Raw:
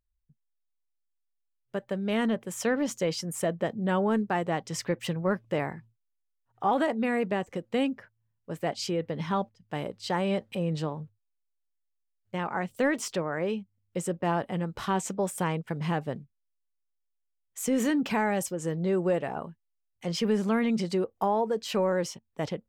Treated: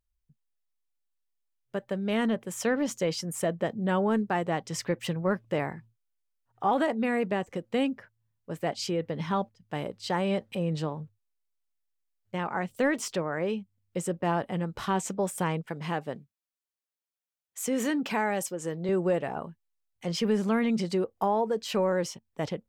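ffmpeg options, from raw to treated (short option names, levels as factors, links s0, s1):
-filter_complex "[0:a]asettb=1/sr,asplit=3[s0][s1][s2];[s0]atrim=end=15.664[s3];[s1]atrim=start=15.66:end=18.89,asetpts=PTS-STARTPTS,afade=t=in:d=0.004:c=qsin,afade=t=out:st=3.226:d=0.004:c=qsin,highpass=f=260:p=1[s4];[s2]atrim=start=18.886[s5];[s3][s4]acrossfade=d=0.004:c1=hsin:c2=qsin[s6];[s6][s5]acrossfade=d=0.004:c1=qsin:c2=hsin"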